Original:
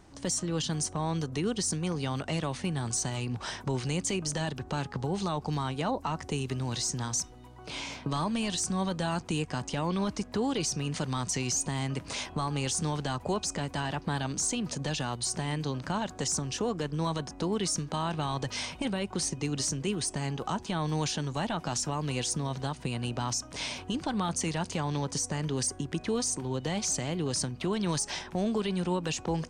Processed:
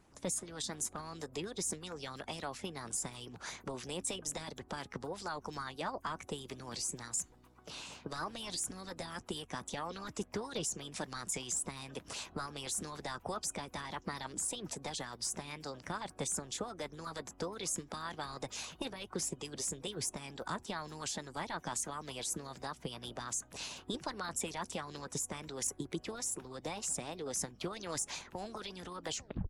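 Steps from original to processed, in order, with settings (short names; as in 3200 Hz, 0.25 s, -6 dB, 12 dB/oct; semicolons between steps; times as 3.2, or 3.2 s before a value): tape stop at the end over 0.39 s; harmonic-percussive split harmonic -15 dB; formant shift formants +3 st; gain -4.5 dB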